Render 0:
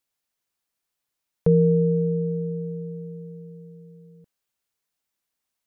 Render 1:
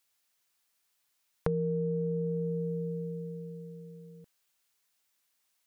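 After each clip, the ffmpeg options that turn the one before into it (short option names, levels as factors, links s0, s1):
-af "acompressor=threshold=0.0398:ratio=6,tiltshelf=f=770:g=-4.5,volume=1.33"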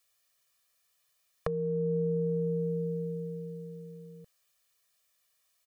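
-filter_complex "[0:a]aecho=1:1:1.7:0.8,acrossover=split=560[s0][s1];[s0]alimiter=limit=0.0668:level=0:latency=1:release=495[s2];[s2][s1]amix=inputs=2:normalize=0"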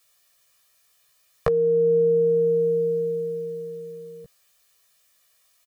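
-filter_complex "[0:a]asplit=2[s0][s1];[s1]adelay=15,volume=0.668[s2];[s0][s2]amix=inputs=2:normalize=0,volume=2.66"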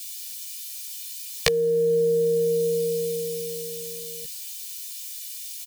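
-af "aexciter=amount=11.3:drive=9:freq=2100,volume=0.794"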